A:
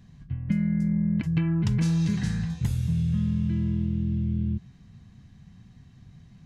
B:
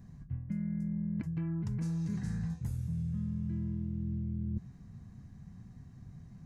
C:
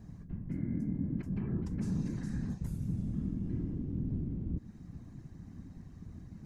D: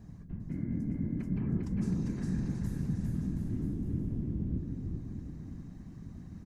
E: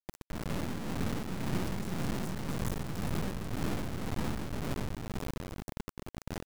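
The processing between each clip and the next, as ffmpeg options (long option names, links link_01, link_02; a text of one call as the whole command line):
ffmpeg -i in.wav -af "equalizer=frequency=3200:width_type=o:width=1.2:gain=-14,areverse,acompressor=threshold=-32dB:ratio=10,areverse" out.wav
ffmpeg -i in.wav -af "alimiter=level_in=6.5dB:limit=-24dB:level=0:latency=1:release=187,volume=-6.5dB,afftfilt=real='hypot(re,im)*cos(2*PI*random(0))':imag='hypot(re,im)*sin(2*PI*random(1))':win_size=512:overlap=0.75,volume=8dB" out.wav
ffmpeg -i in.wav -af "aecho=1:1:400|720|976|1181|1345:0.631|0.398|0.251|0.158|0.1" out.wav
ffmpeg -i in.wav -af "asoftclip=type=tanh:threshold=-31.5dB,acrusher=bits=4:dc=4:mix=0:aa=0.000001,tremolo=f=1.9:d=0.47,volume=8dB" out.wav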